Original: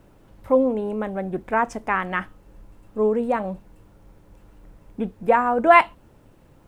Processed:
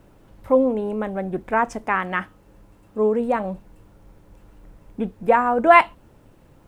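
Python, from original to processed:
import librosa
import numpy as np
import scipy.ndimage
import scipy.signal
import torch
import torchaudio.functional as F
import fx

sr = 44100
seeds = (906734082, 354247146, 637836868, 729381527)

y = fx.highpass(x, sr, hz=70.0, slope=6, at=(1.84, 3.18))
y = y * 10.0 ** (1.0 / 20.0)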